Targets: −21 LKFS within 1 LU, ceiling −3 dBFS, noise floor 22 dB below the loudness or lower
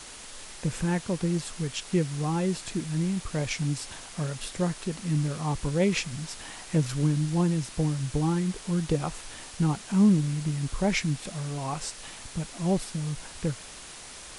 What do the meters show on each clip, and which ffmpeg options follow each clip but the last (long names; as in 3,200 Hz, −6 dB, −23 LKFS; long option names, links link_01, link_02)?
background noise floor −44 dBFS; target noise floor −51 dBFS; integrated loudness −28.5 LKFS; sample peak −12.0 dBFS; target loudness −21.0 LKFS
→ -af "afftdn=noise_reduction=7:noise_floor=-44"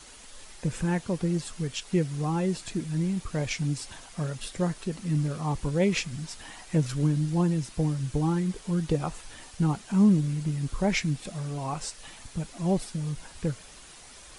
background noise floor −49 dBFS; target noise floor −51 dBFS
→ -af "afftdn=noise_reduction=6:noise_floor=-49"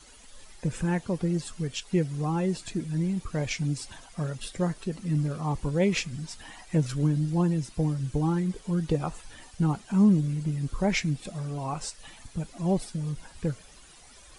background noise floor −52 dBFS; integrated loudness −29.0 LKFS; sample peak −12.5 dBFS; target loudness −21.0 LKFS
→ -af "volume=8dB"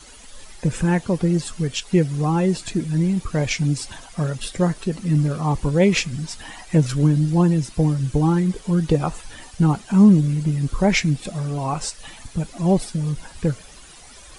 integrated loudness −21.0 LKFS; sample peak −4.5 dBFS; background noise floor −44 dBFS